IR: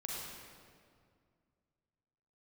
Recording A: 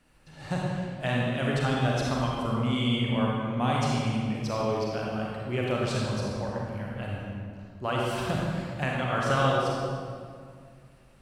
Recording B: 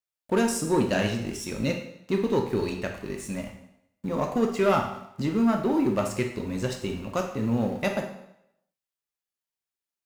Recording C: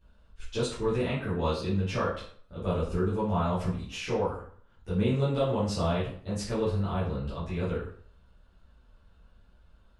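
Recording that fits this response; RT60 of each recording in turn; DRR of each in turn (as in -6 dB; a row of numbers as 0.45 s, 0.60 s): A; 2.1 s, 0.80 s, 0.55 s; -4.0 dB, 2.5 dB, -11.5 dB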